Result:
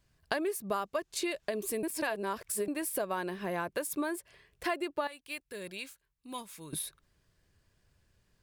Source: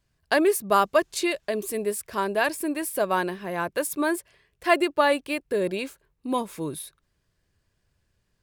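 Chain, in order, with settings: 1.83–2.68 s: reverse; 5.07–6.73 s: amplifier tone stack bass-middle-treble 5-5-5; compression 5:1, threshold -33 dBFS, peak gain reduction 17.5 dB; trim +1.5 dB

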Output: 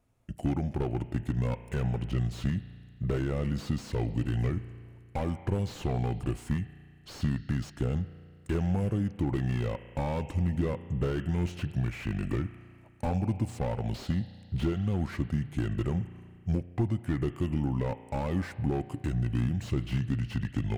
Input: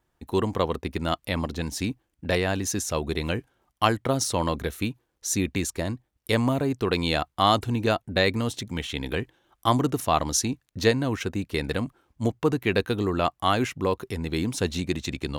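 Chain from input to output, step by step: fifteen-band graphic EQ 160 Hz +10 dB, 1.6 kHz -5 dB, 6.3 kHz -6 dB; compression 6:1, threshold -25 dBFS, peak gain reduction 11 dB; speed mistake 45 rpm record played at 33 rpm; spring tank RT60 2.2 s, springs 34 ms, chirp 20 ms, DRR 16.5 dB; slew-rate limiter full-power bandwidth 23 Hz

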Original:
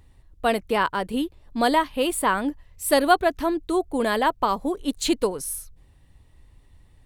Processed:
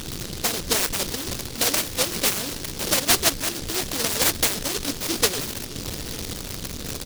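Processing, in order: one-bit delta coder 16 kbps, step -21.5 dBFS; peaking EQ 540 Hz +9 dB 2.1 oct; hum notches 50/100/150/200/250/300/350 Hz; harmonic-percussive split harmonic -15 dB; in parallel at -3 dB: peak limiter -14.5 dBFS, peak gain reduction 10 dB; on the sum: band noise 71–570 Hz -32 dBFS; on a send: delay 901 ms -19 dB; on the sum: delay time shaken by noise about 4.5 kHz, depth 0.4 ms; trim -6 dB

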